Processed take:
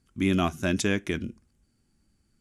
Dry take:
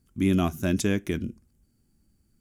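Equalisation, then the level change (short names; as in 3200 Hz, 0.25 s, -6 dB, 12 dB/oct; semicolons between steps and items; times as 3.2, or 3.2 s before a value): LPF 11000 Hz 24 dB/oct; tilt shelf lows -4.5 dB, about 640 Hz; high shelf 5700 Hz -8.5 dB; +1.5 dB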